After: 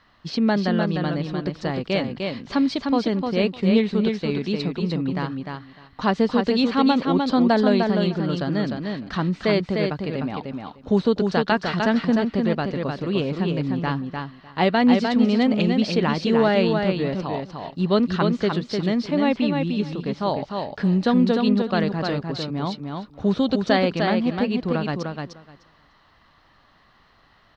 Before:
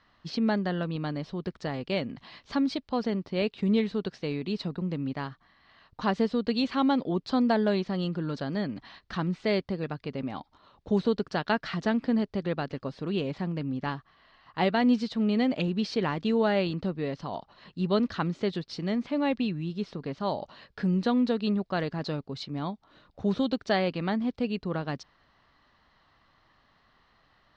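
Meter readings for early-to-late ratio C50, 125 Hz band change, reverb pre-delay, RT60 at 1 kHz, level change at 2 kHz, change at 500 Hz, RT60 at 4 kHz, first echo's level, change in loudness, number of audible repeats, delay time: no reverb, +7.5 dB, no reverb, no reverb, +7.5 dB, +7.5 dB, no reverb, -4.5 dB, +7.0 dB, 2, 302 ms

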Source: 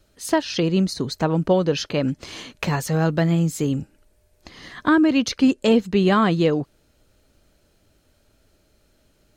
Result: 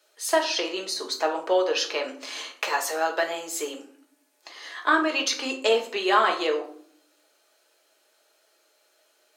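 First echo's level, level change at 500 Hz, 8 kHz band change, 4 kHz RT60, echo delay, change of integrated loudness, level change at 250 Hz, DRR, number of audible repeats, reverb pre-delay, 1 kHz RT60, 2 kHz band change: no echo, -3.0 dB, +2.5 dB, 0.35 s, no echo, -4.5 dB, -14.5 dB, 1.0 dB, no echo, 5 ms, 0.55 s, +1.5 dB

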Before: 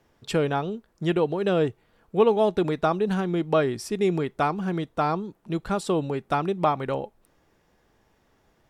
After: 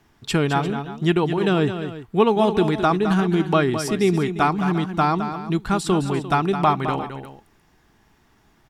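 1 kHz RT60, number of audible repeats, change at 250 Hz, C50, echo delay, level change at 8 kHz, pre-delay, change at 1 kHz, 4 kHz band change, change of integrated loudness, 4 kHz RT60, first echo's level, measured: no reverb, 2, +6.0 dB, no reverb, 213 ms, +7.0 dB, no reverb, +5.5 dB, +7.0 dB, +4.5 dB, no reverb, -9.5 dB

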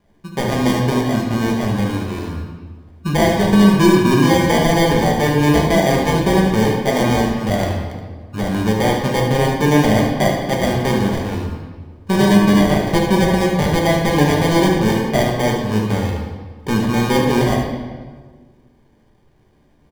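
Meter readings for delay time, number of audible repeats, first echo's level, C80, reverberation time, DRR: 74 ms, 1, -8.0 dB, 5.0 dB, 1.5 s, -2.0 dB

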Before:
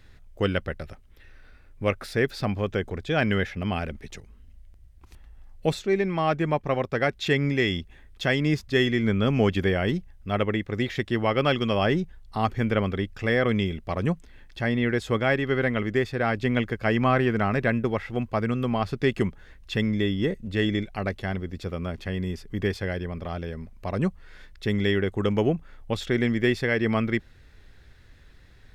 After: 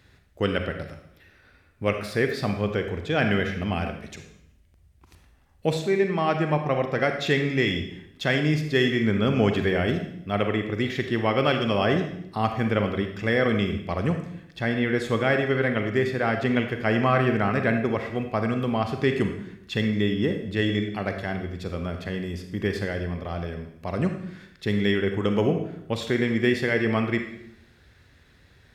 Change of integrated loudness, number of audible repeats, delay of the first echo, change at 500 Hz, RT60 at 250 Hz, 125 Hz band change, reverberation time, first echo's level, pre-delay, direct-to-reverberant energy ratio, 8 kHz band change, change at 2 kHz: +1.0 dB, no echo, no echo, +1.0 dB, 0.90 s, 0.0 dB, 0.75 s, no echo, 34 ms, 5.0 dB, no reading, +1.0 dB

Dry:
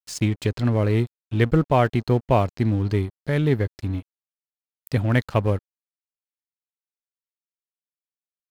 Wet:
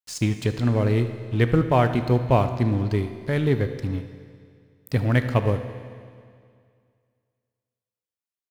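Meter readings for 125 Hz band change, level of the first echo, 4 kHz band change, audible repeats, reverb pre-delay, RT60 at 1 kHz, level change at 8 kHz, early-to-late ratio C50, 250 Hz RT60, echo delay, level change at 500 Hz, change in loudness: 0.0 dB, -16.5 dB, -0.5 dB, 1, 16 ms, 2.2 s, no reading, 9.5 dB, 2.2 s, 77 ms, -0.5 dB, -0.5 dB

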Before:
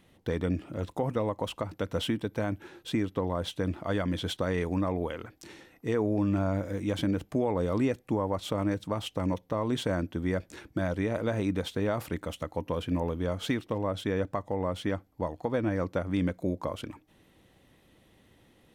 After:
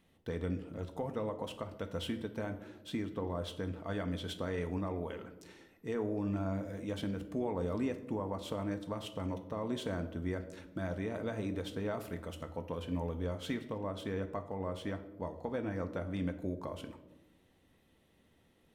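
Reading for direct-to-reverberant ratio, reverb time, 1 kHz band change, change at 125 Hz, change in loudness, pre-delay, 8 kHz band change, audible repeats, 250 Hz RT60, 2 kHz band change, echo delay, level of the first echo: 7.0 dB, 1.0 s, -7.5 dB, -7.5 dB, -7.5 dB, 4 ms, -8.0 dB, no echo, 1.4 s, -7.5 dB, no echo, no echo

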